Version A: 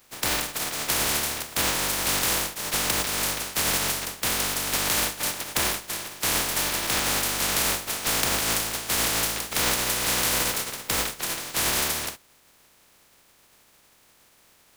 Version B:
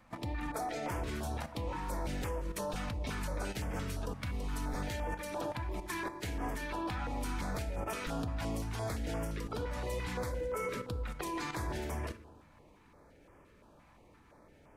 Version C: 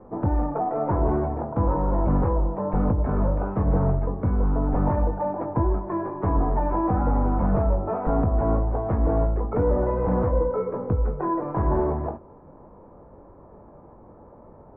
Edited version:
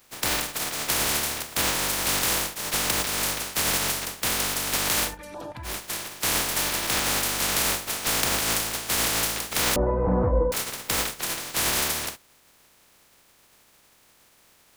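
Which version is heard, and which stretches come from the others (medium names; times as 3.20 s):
A
5.10–5.71 s: from B, crossfade 0.16 s
9.76–10.52 s: from C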